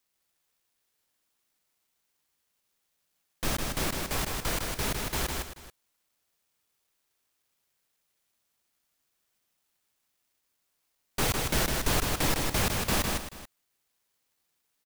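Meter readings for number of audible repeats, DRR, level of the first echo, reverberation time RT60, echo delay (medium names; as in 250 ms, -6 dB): 3, no reverb, -3.5 dB, no reverb, 156 ms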